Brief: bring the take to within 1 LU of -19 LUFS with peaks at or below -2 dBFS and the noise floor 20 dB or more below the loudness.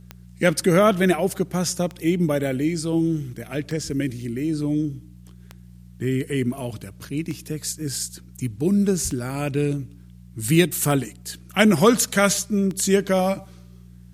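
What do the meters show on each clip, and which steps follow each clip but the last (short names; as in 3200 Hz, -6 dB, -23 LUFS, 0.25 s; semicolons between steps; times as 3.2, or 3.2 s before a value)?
clicks 8; hum 60 Hz; harmonics up to 180 Hz; hum level -41 dBFS; loudness -22.5 LUFS; peak -2.0 dBFS; loudness target -19.0 LUFS
-> de-click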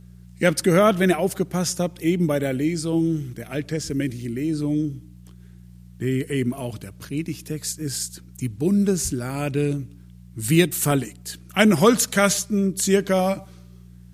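clicks 0; hum 60 Hz; harmonics up to 180 Hz; hum level -41 dBFS
-> de-hum 60 Hz, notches 3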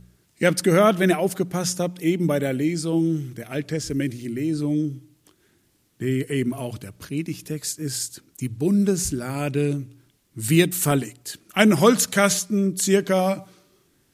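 hum none; loudness -22.5 LUFS; peak -1.5 dBFS; loudness target -19.0 LUFS
-> gain +3.5 dB; limiter -2 dBFS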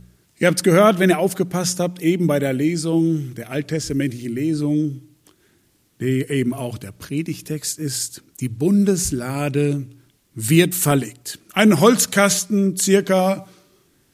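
loudness -19.0 LUFS; peak -2.0 dBFS; noise floor -61 dBFS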